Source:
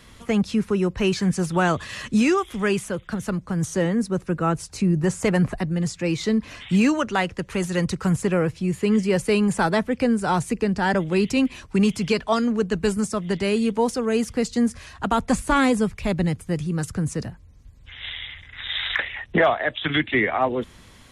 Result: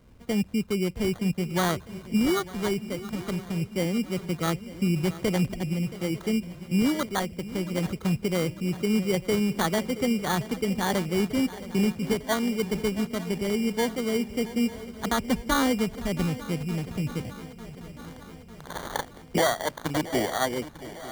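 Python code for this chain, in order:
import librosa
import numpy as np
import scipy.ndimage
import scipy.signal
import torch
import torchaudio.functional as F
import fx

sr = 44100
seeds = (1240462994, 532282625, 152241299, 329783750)

y = fx.wiener(x, sr, points=25)
y = fx.spec_box(y, sr, start_s=4.54, length_s=0.59, low_hz=950.0, high_hz=3500.0, gain_db=7)
y = fx.sample_hold(y, sr, seeds[0], rate_hz=2600.0, jitter_pct=0)
y = fx.echo_swing(y, sr, ms=899, ratio=3, feedback_pct=59, wet_db=-16)
y = y * 10.0 ** (-4.5 / 20.0)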